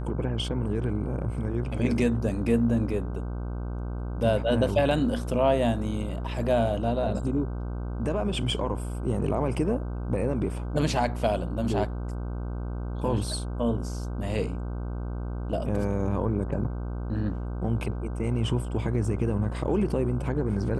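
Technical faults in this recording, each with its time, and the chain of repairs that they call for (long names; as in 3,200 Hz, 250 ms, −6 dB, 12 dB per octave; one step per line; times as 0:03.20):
mains buzz 60 Hz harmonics 26 −32 dBFS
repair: hum removal 60 Hz, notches 26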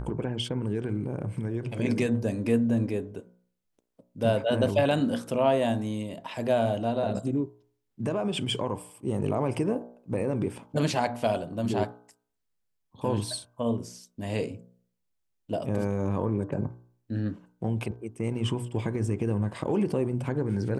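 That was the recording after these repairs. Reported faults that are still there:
none of them is left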